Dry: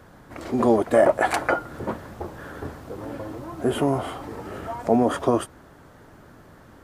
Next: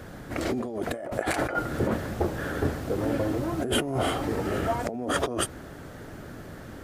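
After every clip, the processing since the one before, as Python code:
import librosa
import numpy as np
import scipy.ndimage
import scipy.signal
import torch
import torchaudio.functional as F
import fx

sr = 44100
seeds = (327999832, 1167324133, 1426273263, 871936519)

y = fx.over_compress(x, sr, threshold_db=-29.0, ratio=-1.0)
y = fx.peak_eq(y, sr, hz=1000.0, db=-7.5, octaves=0.65)
y = y * 10.0 ** (2.5 / 20.0)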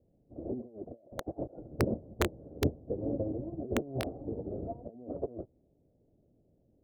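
y = scipy.signal.sosfilt(scipy.signal.butter(6, 650.0, 'lowpass', fs=sr, output='sos'), x)
y = (np.mod(10.0 ** (16.0 / 20.0) * y + 1.0, 2.0) - 1.0) / 10.0 ** (16.0 / 20.0)
y = fx.upward_expand(y, sr, threshold_db=-40.0, expansion=2.5)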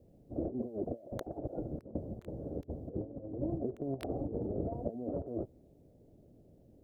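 y = fx.over_compress(x, sr, threshold_db=-40.0, ratio=-0.5)
y = y * 10.0 ** (3.0 / 20.0)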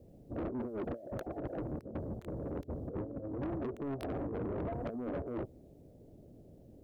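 y = 10.0 ** (-38.0 / 20.0) * np.tanh(x / 10.0 ** (-38.0 / 20.0))
y = y * 10.0 ** (4.5 / 20.0)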